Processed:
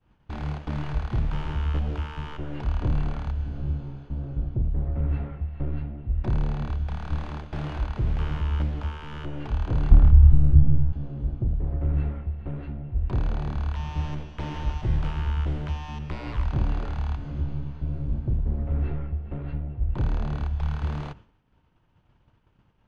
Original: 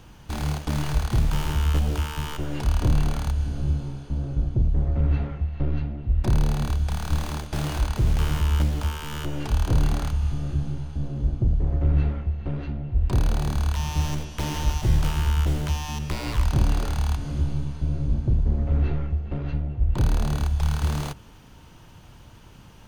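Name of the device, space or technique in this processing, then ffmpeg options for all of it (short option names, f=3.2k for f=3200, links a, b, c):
hearing-loss simulation: -filter_complex "[0:a]asettb=1/sr,asplit=3[a][b][c];[a]atrim=end=9.914[d];[b]atrim=start=9.91:end=10.93,asetpts=PTS-STARTPTS,afade=t=in:d=0.004:c=qsin,afade=t=out:st=1.016:d=0.004:c=qsin,aemphasis=mode=reproduction:type=riaa[e];[c]atrim=start=10.926[f];[d][e]acrossfade=d=0.004:c1=hsin:c2=qsin[g];[g][f]acrossfade=d=0.004:c1=qsin:c2=hsin,lowpass=2.6k,agate=range=-33dB:threshold=-38dB:ratio=3:detection=peak,volume=-4dB"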